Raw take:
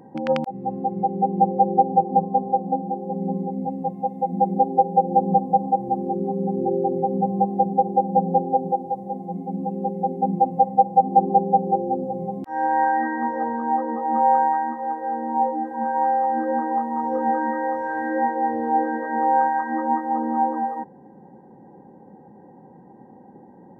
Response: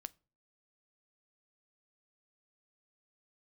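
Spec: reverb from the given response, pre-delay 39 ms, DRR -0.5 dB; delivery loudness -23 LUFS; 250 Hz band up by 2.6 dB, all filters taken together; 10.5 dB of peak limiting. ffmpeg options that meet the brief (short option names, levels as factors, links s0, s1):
-filter_complex "[0:a]equalizer=f=250:t=o:g=3.5,alimiter=limit=0.188:level=0:latency=1,asplit=2[s0][s1];[1:a]atrim=start_sample=2205,adelay=39[s2];[s1][s2]afir=irnorm=-1:irlink=0,volume=1.88[s3];[s0][s3]amix=inputs=2:normalize=0,volume=0.891"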